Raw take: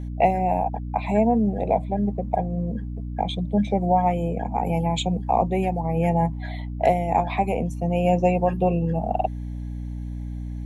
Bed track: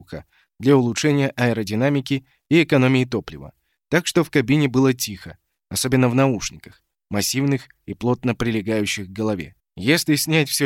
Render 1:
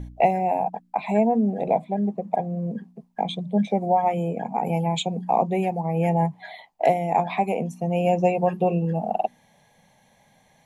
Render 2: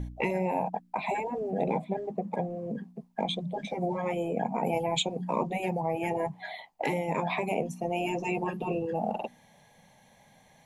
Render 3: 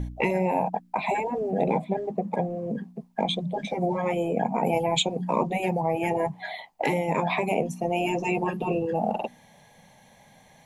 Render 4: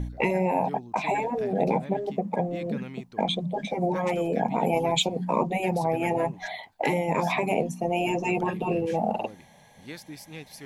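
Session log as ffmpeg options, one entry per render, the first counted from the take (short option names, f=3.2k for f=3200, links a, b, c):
-af "bandreject=f=60:t=h:w=4,bandreject=f=120:t=h:w=4,bandreject=f=180:t=h:w=4,bandreject=f=240:t=h:w=4,bandreject=f=300:t=h:w=4"
-af "afftfilt=real='re*lt(hypot(re,im),0.398)':imag='im*lt(hypot(re,im),0.398)':win_size=1024:overlap=0.75"
-af "volume=4.5dB"
-filter_complex "[1:a]volume=-24dB[a];[0:a][a]amix=inputs=2:normalize=0"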